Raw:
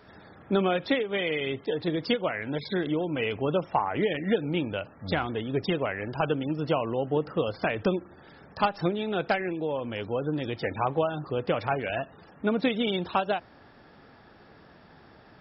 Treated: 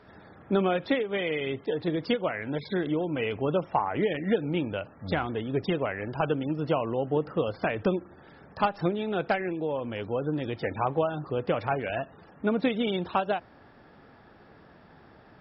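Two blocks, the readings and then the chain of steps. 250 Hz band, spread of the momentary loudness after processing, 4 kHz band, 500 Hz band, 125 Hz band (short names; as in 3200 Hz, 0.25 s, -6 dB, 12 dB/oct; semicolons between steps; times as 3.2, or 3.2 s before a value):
0.0 dB, 5 LU, -3.5 dB, 0.0 dB, 0.0 dB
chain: high shelf 4700 Hz -11.5 dB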